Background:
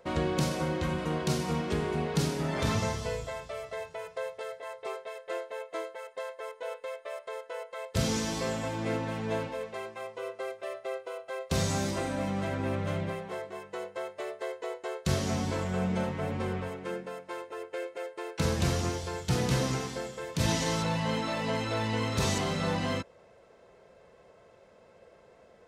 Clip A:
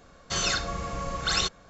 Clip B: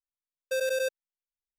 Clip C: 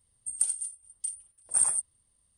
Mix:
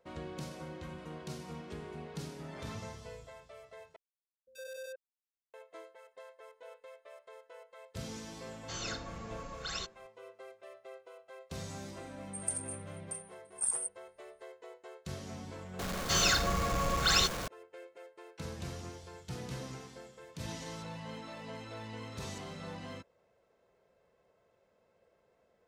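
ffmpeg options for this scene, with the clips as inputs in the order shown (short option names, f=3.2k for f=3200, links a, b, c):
-filter_complex "[1:a]asplit=2[a][b];[0:a]volume=-14dB[c];[2:a]acrossover=split=310|1800[d][e][f];[f]adelay=80[g];[e]adelay=110[h];[d][h][g]amix=inputs=3:normalize=0[i];[b]aeval=exprs='val(0)+0.5*0.0299*sgn(val(0))':c=same[j];[c]asplit=2[k][l];[k]atrim=end=3.964[m];[i]atrim=end=1.58,asetpts=PTS-STARTPTS,volume=-15.5dB[n];[l]atrim=start=5.536[o];[a]atrim=end=1.69,asetpts=PTS-STARTPTS,volume=-13.5dB,afade=t=in:d=0.004:c=hsin,afade=t=out:st=1.686:d=0.004:c=hsin,adelay=8380[p];[3:a]atrim=end=2.37,asetpts=PTS-STARTPTS,volume=-8.5dB,afade=t=in:d=0.004:c=hsin,afade=t=out:st=2.366:d=0.004:c=hsin,adelay=12070[q];[j]atrim=end=1.69,asetpts=PTS-STARTPTS,volume=-2.5dB,afade=t=in:d=0.004:c=hsin,afade=t=out:st=1.686:d=0.004:c=hsin,adelay=15790[r];[m][n]acrossfade=d=0.004:c1=hsin:c2=hsin[s];[s][o]acrossfade=d=0.004:c1=hsin:c2=hsin[t];[t][p][q][r]amix=inputs=4:normalize=0"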